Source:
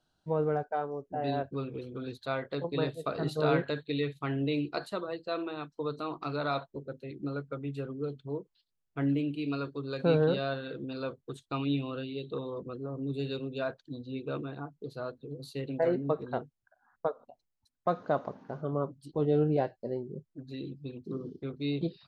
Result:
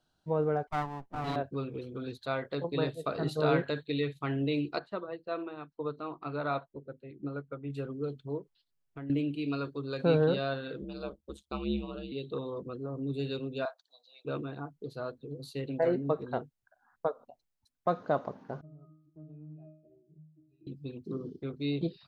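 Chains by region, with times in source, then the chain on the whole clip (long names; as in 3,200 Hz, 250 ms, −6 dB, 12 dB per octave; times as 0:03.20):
0:00.67–0:01.36: lower of the sound and its delayed copy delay 1 ms + multiband upward and downward expander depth 40%
0:04.79–0:07.70: low-pass filter 2,600 Hz + expander for the loud parts, over −43 dBFS
0:08.39–0:09.10: high-shelf EQ 3,900 Hz −4.5 dB + comb filter 7.2 ms, depth 56% + downward compressor 4 to 1, threshold −41 dBFS
0:10.81–0:12.12: parametric band 1,800 Hz −11 dB 0.52 octaves + ring modulation 72 Hz
0:13.65–0:14.25: elliptic high-pass filter 670 Hz, stop band 50 dB + flat-topped bell 2,200 Hz −8.5 dB 1.2 octaves
0:18.61–0:20.67: parametric band 1,300 Hz −7.5 dB 1.8 octaves + resonances in every octave D#, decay 0.57 s + downward compressor 3 to 1, threshold −47 dBFS
whole clip: no processing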